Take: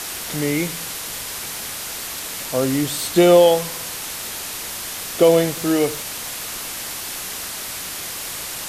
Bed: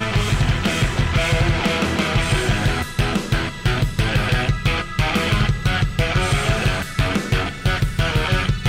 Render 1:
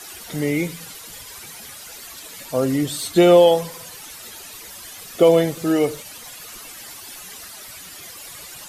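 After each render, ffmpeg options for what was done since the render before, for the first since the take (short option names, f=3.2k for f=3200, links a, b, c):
-af "afftdn=nr=13:nf=-30"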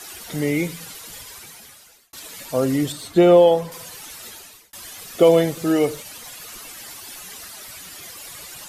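-filter_complex "[0:a]asettb=1/sr,asplit=3[a][b][c];[a]atrim=end=2.924[d];[b]atrim=start=2.92:end=3.72,asetpts=PTS-STARTPTS,afade=t=in:d=0.004:c=qsin,afade=t=out:st=0.796:d=0.004:c=qsin,highshelf=f=2.6k:g=-10[e];[c]atrim=start=3.716[f];[d][e]acrossfade=d=0.004:c1=hsin:c2=qsin[g];[g][f]acrossfade=d=0.004:c1=qsin:c2=hsin,asplit=3[h][i][j];[h]atrim=end=2.13,asetpts=PTS-STARTPTS,afade=t=out:st=1.19:d=0.94[k];[i]atrim=start=2.13:end=4.73,asetpts=PTS-STARTPTS,afade=t=in:d=0.004:c=hsin,afade=t=out:st=2.15:d=0.45[l];[j]atrim=start=4.73,asetpts=PTS-STARTPTS,afade=t=in:d=0.004:c=hsin[m];[k][l][m]concat=n=3:v=0:a=1"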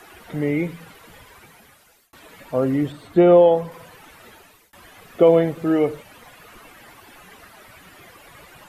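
-filter_complex "[0:a]acrossover=split=2900[a][b];[b]acompressor=threshold=-52dB:ratio=4:attack=1:release=60[c];[a][c]amix=inputs=2:normalize=0,equalizer=f=5.4k:w=0.66:g=-5"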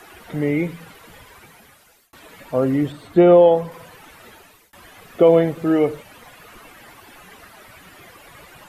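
-af "volume=1.5dB,alimiter=limit=-3dB:level=0:latency=1"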